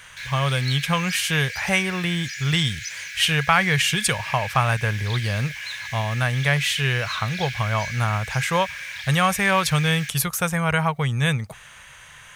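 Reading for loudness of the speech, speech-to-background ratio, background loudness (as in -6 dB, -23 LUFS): -22.5 LUFS, 9.0 dB, -31.5 LUFS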